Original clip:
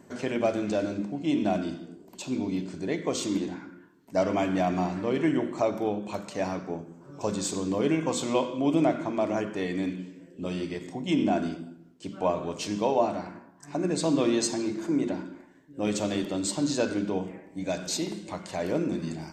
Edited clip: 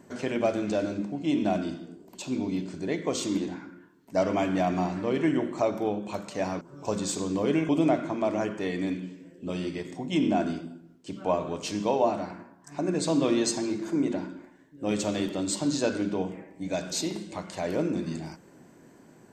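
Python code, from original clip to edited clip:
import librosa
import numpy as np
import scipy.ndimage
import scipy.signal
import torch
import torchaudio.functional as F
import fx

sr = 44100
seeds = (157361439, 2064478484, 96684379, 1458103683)

y = fx.edit(x, sr, fx.cut(start_s=6.61, length_s=0.36),
    fx.cut(start_s=8.05, length_s=0.6), tone=tone)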